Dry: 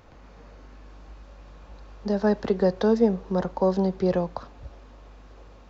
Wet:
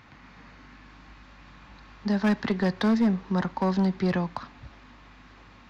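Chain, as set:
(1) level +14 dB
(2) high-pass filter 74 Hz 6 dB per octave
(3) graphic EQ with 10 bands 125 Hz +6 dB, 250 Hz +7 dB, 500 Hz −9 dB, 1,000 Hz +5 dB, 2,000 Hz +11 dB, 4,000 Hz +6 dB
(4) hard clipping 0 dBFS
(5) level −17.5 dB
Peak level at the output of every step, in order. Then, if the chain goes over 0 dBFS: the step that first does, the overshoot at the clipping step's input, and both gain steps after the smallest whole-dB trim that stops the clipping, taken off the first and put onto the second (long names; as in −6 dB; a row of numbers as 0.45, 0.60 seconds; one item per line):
+5.5, +5.0, +7.0, 0.0, −17.5 dBFS
step 1, 7.0 dB
step 1 +7 dB, step 5 −10.5 dB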